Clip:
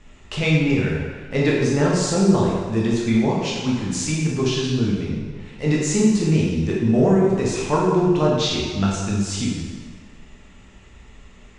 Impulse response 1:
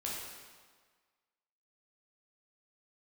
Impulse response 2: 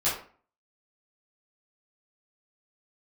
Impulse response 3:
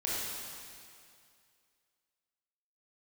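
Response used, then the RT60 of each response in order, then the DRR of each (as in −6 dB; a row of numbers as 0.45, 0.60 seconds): 1; 1.6, 0.45, 2.3 seconds; −5.0, −11.5, −7.0 decibels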